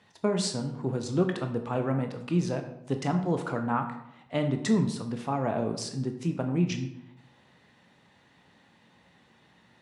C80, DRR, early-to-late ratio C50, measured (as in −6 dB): 11.5 dB, 5.0 dB, 8.5 dB